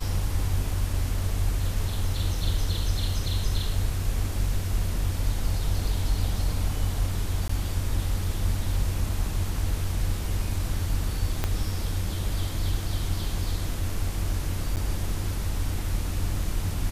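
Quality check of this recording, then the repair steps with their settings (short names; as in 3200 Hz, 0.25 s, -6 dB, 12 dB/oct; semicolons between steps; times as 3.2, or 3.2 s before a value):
7.48–7.49 gap 14 ms
11.44 pop -11 dBFS
14.76–14.77 gap 9.3 ms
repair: de-click; interpolate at 7.48, 14 ms; interpolate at 14.76, 9.3 ms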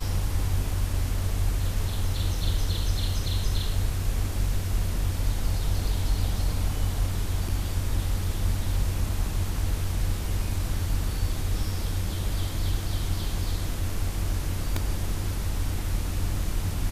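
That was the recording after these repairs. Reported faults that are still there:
11.44 pop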